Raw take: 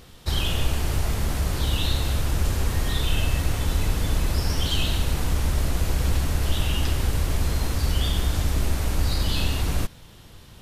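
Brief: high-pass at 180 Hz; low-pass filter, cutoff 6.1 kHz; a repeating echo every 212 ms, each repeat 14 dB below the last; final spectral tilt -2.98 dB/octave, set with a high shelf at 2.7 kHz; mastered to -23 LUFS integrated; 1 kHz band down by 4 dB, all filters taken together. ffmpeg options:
-af "highpass=180,lowpass=6100,equalizer=f=1000:t=o:g=-6,highshelf=f=2700:g=4.5,aecho=1:1:212|424:0.2|0.0399,volume=2.11"

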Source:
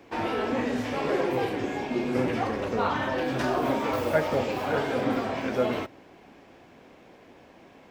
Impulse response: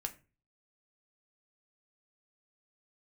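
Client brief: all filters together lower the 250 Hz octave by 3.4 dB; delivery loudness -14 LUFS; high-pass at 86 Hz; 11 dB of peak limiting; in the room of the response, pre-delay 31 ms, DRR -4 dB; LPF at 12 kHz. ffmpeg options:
-filter_complex "[0:a]highpass=86,lowpass=12000,equalizer=f=250:t=o:g=-4,alimiter=limit=0.0708:level=0:latency=1,asplit=2[s0][s1];[1:a]atrim=start_sample=2205,adelay=31[s2];[s1][s2]afir=irnorm=-1:irlink=0,volume=1.78[s3];[s0][s3]amix=inputs=2:normalize=0,volume=4.22"

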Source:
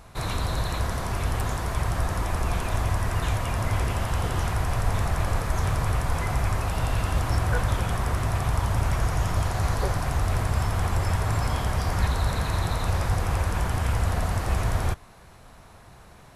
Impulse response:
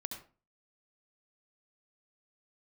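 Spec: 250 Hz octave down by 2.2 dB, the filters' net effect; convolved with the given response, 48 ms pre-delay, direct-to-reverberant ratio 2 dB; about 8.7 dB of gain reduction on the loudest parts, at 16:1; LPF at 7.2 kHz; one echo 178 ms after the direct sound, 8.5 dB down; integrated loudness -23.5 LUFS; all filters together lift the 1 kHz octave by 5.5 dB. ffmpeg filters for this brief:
-filter_complex "[0:a]lowpass=7200,equalizer=f=250:t=o:g=-4,equalizer=f=1000:t=o:g=7,acompressor=threshold=0.0447:ratio=16,aecho=1:1:178:0.376,asplit=2[s0][s1];[1:a]atrim=start_sample=2205,adelay=48[s2];[s1][s2]afir=irnorm=-1:irlink=0,volume=0.944[s3];[s0][s3]amix=inputs=2:normalize=0,volume=2.11"

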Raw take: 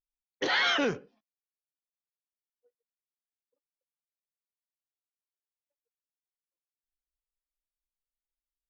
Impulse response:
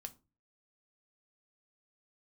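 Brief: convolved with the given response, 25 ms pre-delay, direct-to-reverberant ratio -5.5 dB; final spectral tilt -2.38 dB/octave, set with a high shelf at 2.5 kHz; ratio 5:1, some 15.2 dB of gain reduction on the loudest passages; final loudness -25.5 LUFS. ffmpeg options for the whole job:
-filter_complex "[0:a]highshelf=f=2500:g=5,acompressor=threshold=0.0112:ratio=5,asplit=2[s0][s1];[1:a]atrim=start_sample=2205,adelay=25[s2];[s1][s2]afir=irnorm=-1:irlink=0,volume=3.35[s3];[s0][s3]amix=inputs=2:normalize=0,volume=2.37"

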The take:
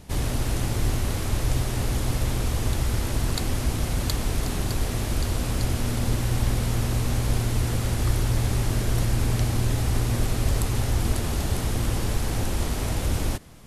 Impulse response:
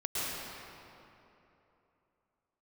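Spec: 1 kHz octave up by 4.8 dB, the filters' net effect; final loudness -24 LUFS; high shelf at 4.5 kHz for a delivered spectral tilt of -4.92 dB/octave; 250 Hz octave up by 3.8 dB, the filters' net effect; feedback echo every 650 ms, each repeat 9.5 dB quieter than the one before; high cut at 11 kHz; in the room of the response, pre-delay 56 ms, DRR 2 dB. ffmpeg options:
-filter_complex "[0:a]lowpass=11000,equalizer=f=250:t=o:g=4.5,equalizer=f=1000:t=o:g=5.5,highshelf=f=4500:g=6.5,aecho=1:1:650|1300|1950|2600:0.335|0.111|0.0365|0.012,asplit=2[s0][s1];[1:a]atrim=start_sample=2205,adelay=56[s2];[s1][s2]afir=irnorm=-1:irlink=0,volume=0.355[s3];[s0][s3]amix=inputs=2:normalize=0,volume=0.794"

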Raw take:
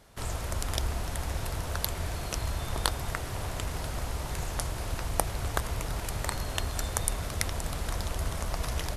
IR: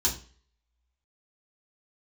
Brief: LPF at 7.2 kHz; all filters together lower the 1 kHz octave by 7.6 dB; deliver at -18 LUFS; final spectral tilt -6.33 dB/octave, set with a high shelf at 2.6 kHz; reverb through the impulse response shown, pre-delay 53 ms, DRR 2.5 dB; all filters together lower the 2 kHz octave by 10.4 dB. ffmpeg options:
-filter_complex "[0:a]lowpass=7200,equalizer=f=1000:t=o:g=-7,equalizer=f=2000:t=o:g=-7.5,highshelf=f=2600:g=-8,asplit=2[s0][s1];[1:a]atrim=start_sample=2205,adelay=53[s2];[s1][s2]afir=irnorm=-1:irlink=0,volume=0.299[s3];[s0][s3]amix=inputs=2:normalize=0,volume=2.82"

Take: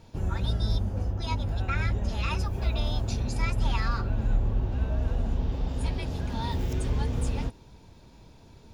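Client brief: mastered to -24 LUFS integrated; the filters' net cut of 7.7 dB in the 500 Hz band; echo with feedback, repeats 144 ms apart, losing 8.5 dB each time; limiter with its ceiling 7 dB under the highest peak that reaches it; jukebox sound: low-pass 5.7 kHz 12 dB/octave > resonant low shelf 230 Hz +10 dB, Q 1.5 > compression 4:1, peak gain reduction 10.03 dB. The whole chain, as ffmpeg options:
-af "equalizer=f=500:t=o:g=-8,alimiter=limit=0.0944:level=0:latency=1,lowpass=5700,lowshelf=f=230:t=q:w=1.5:g=10,aecho=1:1:144|288|432|576:0.376|0.143|0.0543|0.0206,acompressor=threshold=0.0794:ratio=4,volume=1.5"

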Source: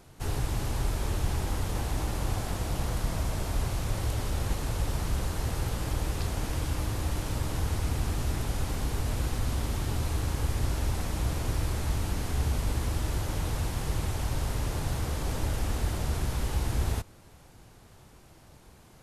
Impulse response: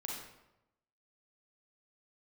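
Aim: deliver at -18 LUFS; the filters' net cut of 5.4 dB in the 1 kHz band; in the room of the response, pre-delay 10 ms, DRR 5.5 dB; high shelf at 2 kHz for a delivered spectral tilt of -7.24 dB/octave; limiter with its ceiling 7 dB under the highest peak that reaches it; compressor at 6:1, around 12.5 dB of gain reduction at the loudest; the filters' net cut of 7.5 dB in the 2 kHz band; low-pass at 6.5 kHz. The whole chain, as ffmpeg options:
-filter_complex "[0:a]lowpass=6500,equalizer=f=1000:t=o:g=-4.5,highshelf=f=2000:g=-7,equalizer=f=2000:t=o:g=-4,acompressor=threshold=0.0126:ratio=6,alimiter=level_in=3.98:limit=0.0631:level=0:latency=1,volume=0.251,asplit=2[s0][s1];[1:a]atrim=start_sample=2205,adelay=10[s2];[s1][s2]afir=irnorm=-1:irlink=0,volume=0.531[s3];[s0][s3]amix=inputs=2:normalize=0,volume=25.1"

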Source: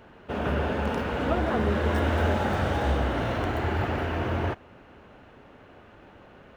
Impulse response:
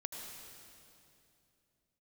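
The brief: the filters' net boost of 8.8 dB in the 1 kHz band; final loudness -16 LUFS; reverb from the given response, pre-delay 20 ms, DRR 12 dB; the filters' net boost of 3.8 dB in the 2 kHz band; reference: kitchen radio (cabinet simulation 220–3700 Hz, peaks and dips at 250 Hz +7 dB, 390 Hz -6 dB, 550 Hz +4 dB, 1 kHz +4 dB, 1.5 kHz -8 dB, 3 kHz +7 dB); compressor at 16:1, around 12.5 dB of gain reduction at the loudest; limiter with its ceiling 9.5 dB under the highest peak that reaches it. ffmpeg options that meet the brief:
-filter_complex "[0:a]equalizer=f=1000:t=o:g=8.5,equalizer=f=2000:t=o:g=6,acompressor=threshold=0.0316:ratio=16,alimiter=level_in=1.88:limit=0.0631:level=0:latency=1,volume=0.531,asplit=2[s0][s1];[1:a]atrim=start_sample=2205,adelay=20[s2];[s1][s2]afir=irnorm=-1:irlink=0,volume=0.282[s3];[s0][s3]amix=inputs=2:normalize=0,highpass=220,equalizer=f=250:t=q:w=4:g=7,equalizer=f=390:t=q:w=4:g=-6,equalizer=f=550:t=q:w=4:g=4,equalizer=f=1000:t=q:w=4:g=4,equalizer=f=1500:t=q:w=4:g=-8,equalizer=f=3000:t=q:w=4:g=7,lowpass=f=3700:w=0.5412,lowpass=f=3700:w=1.3066,volume=14.1"

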